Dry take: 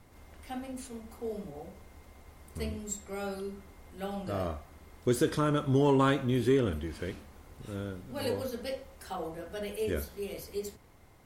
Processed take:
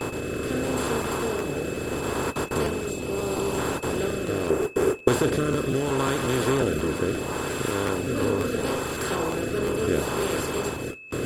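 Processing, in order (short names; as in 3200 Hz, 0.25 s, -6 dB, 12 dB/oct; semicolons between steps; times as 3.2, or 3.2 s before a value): per-bin compression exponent 0.2; 2.9–3.58 bell 1700 Hz -11.5 dB 0.61 oct; thin delay 0.419 s, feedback 45%, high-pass 1400 Hz, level -7.5 dB; gate with hold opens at -15 dBFS; rotary speaker horn 0.75 Hz; whine 2600 Hz -39 dBFS; reverb removal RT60 0.6 s; 4.5–5.08 fifteen-band EQ 400 Hz +12 dB, 1000 Hz -4 dB, 4000 Hz -8 dB; crackling interface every 0.18 s, samples 512, repeat, from 0.48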